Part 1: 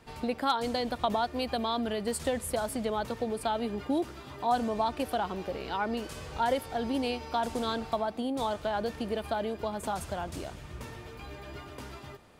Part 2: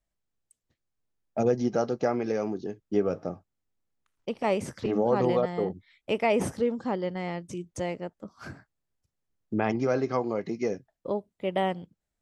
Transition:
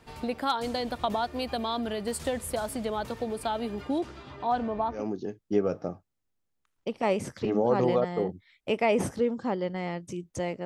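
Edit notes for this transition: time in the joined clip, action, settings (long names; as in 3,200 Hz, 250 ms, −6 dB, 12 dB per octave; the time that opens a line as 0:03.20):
part 1
0:03.81–0:05.08: low-pass filter 11,000 Hz → 1,200 Hz
0:04.99: continue with part 2 from 0:02.40, crossfade 0.18 s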